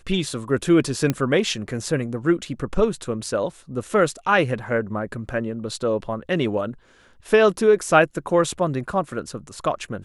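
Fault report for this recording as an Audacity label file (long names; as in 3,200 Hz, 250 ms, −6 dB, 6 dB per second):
1.100000	1.100000	click −8 dBFS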